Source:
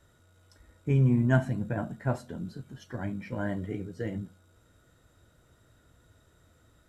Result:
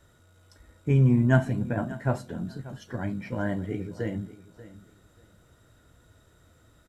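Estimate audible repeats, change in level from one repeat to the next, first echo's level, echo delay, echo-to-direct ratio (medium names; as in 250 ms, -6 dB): 2, -13.0 dB, -17.0 dB, 587 ms, -17.0 dB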